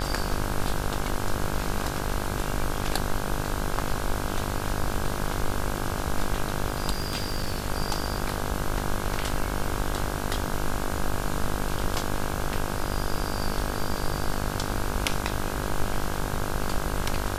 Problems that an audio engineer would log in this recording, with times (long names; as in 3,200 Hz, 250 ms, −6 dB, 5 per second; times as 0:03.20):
mains buzz 50 Hz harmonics 33 −32 dBFS
0:06.91–0:07.68: clipping −22.5 dBFS